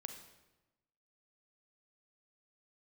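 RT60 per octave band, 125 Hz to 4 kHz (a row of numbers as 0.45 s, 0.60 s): 1.2 s, 1.2 s, 1.1 s, 1.0 s, 0.95 s, 0.85 s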